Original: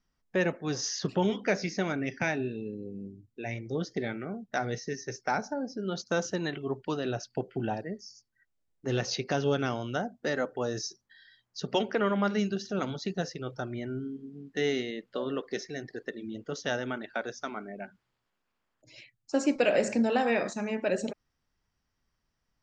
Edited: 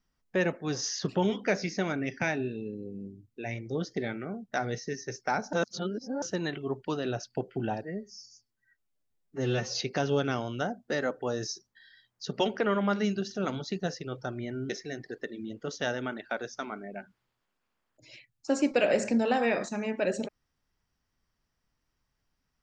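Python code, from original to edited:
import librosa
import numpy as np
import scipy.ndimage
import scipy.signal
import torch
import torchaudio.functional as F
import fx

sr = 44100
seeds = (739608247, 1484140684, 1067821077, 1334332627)

y = fx.edit(x, sr, fx.reverse_span(start_s=5.53, length_s=0.69),
    fx.stretch_span(start_s=7.83, length_s=1.31, factor=1.5),
    fx.cut(start_s=14.04, length_s=1.5), tone=tone)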